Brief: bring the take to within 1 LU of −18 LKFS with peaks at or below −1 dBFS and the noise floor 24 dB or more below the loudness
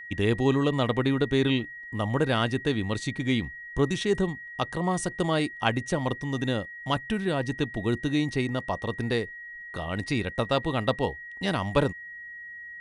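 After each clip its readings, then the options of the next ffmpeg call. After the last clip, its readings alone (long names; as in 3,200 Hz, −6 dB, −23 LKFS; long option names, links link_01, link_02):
interfering tone 1,900 Hz; level of the tone −39 dBFS; integrated loudness −28.0 LKFS; sample peak −8.0 dBFS; target loudness −18.0 LKFS
→ -af "bandreject=frequency=1900:width=30"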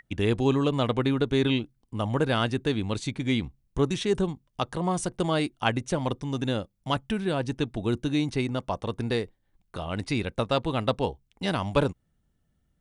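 interfering tone none found; integrated loudness −28.0 LKFS; sample peak −8.5 dBFS; target loudness −18.0 LKFS
→ -af "volume=10dB,alimiter=limit=-1dB:level=0:latency=1"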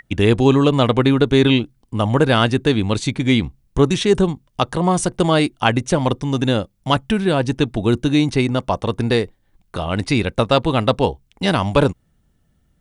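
integrated loudness −18.0 LKFS; sample peak −1.0 dBFS; background noise floor −63 dBFS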